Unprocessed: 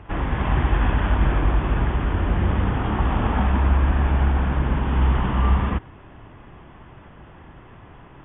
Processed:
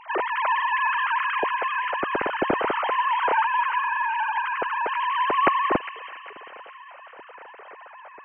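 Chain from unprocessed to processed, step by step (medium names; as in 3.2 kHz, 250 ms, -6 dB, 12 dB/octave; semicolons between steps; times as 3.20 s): formants replaced by sine waves; feedback echo behind a high-pass 406 ms, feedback 46%, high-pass 2.3 kHz, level -6 dB; trim -5 dB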